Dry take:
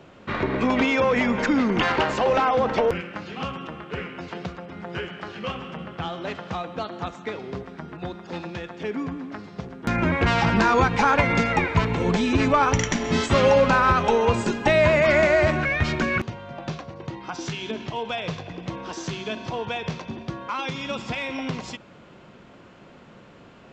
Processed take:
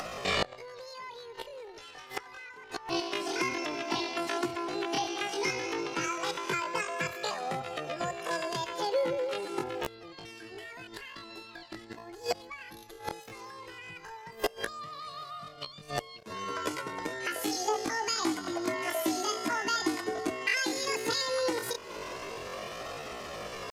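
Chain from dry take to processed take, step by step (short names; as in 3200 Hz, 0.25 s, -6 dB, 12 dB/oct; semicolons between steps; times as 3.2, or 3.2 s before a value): upward compressor, threshold -27 dBFS; flange 0.13 Hz, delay 3 ms, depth 2.9 ms, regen +10%; flipped gate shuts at -18 dBFS, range -25 dB; pitch shift +11.5 st; gain +2.5 dB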